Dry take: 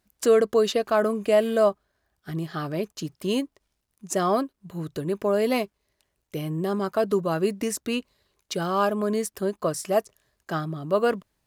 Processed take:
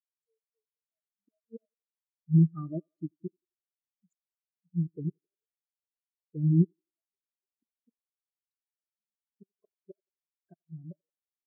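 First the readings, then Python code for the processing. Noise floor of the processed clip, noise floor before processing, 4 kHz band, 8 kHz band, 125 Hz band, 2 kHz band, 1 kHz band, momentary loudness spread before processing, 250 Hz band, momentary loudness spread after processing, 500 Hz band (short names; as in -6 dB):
under -85 dBFS, -78 dBFS, under -40 dB, under -40 dB, +4.0 dB, under -40 dB, under -30 dB, 12 LU, -5.0 dB, 21 LU, -26.0 dB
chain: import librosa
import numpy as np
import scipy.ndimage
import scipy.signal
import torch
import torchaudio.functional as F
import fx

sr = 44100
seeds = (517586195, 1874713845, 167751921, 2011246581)

y = fx.gate_flip(x, sr, shuts_db=-19.0, range_db=-29)
y = fx.echo_thinned(y, sr, ms=87, feedback_pct=80, hz=190.0, wet_db=-10)
y = fx.spectral_expand(y, sr, expansion=4.0)
y = y * librosa.db_to_amplitude(3.5)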